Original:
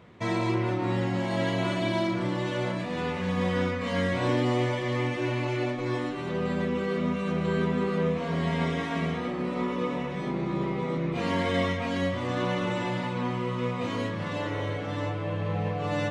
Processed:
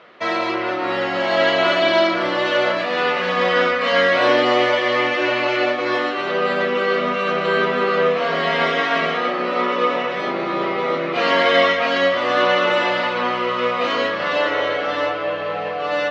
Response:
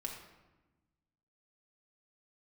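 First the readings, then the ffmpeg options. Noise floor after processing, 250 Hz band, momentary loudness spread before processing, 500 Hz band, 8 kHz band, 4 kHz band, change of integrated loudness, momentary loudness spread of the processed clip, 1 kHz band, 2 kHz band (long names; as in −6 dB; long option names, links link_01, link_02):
−24 dBFS, +1.5 dB, 4 LU, +11.5 dB, can't be measured, +15.0 dB, +10.0 dB, 6 LU, +13.5 dB, +15.0 dB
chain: -af "highpass=490,equalizer=frequency=610:width_type=q:width=4:gain=4,equalizer=frequency=950:width_type=q:width=4:gain=-5,equalizer=frequency=1300:width_type=q:width=4:gain=5,equalizer=frequency=2300:width_type=q:width=4:gain=-4,equalizer=frequency=3600:width_type=q:width=4:gain=-6,lowpass=frequency=4100:width=0.5412,lowpass=frequency=4100:width=1.3066,dynaudnorm=framelen=160:gausssize=13:maxgain=4dB,highshelf=frequency=3100:gain=12,volume=9dB"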